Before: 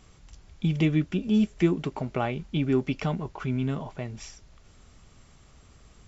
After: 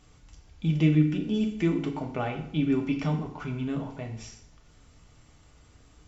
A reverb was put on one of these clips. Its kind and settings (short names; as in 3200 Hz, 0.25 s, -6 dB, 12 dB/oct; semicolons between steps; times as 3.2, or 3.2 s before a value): FDN reverb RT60 0.69 s, low-frequency decay 1.05×, high-frequency decay 0.85×, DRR 2 dB; gain -4 dB